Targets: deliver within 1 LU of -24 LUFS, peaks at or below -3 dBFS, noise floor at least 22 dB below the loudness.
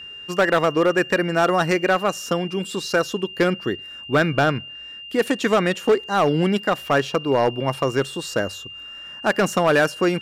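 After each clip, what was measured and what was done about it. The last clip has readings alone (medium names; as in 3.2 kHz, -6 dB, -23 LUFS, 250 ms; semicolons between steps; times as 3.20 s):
clipped samples 1.2%; clipping level -11.0 dBFS; steady tone 2.8 kHz; tone level -35 dBFS; loudness -21.0 LUFS; peak level -11.0 dBFS; loudness target -24.0 LUFS
-> clip repair -11 dBFS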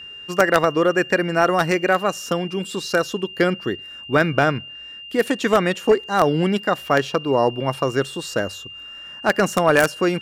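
clipped samples 0.0%; steady tone 2.8 kHz; tone level -35 dBFS
-> band-stop 2.8 kHz, Q 30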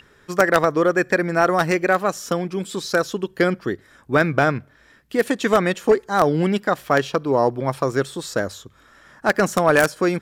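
steady tone not found; loudness -20.5 LUFS; peak level -2.0 dBFS; loudness target -24.0 LUFS
-> trim -3.5 dB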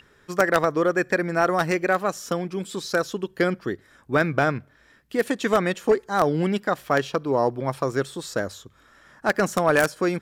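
loudness -24.0 LUFS; peak level -5.5 dBFS; noise floor -58 dBFS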